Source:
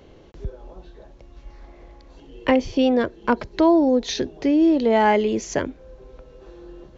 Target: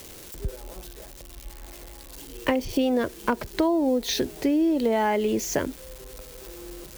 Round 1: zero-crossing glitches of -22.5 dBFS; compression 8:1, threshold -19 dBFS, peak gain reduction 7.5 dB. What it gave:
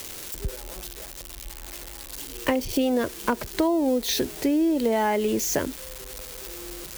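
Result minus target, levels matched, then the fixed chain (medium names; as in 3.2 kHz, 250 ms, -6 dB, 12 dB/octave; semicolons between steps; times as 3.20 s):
zero-crossing glitches: distortion +7 dB
zero-crossing glitches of -29.5 dBFS; compression 8:1, threshold -19 dBFS, peak gain reduction 7.5 dB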